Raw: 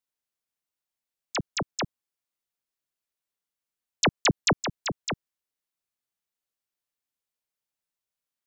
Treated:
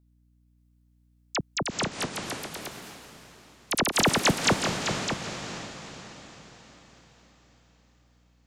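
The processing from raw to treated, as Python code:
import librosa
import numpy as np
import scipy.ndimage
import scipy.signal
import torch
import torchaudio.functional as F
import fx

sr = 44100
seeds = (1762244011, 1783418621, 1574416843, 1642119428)

y = fx.echo_diffused(x, sr, ms=451, feedback_pct=50, wet_db=-7.0)
y = fx.echo_pitch(y, sr, ms=586, semitones=4, count=3, db_per_echo=-3.0)
y = fx.add_hum(y, sr, base_hz=60, snr_db=31)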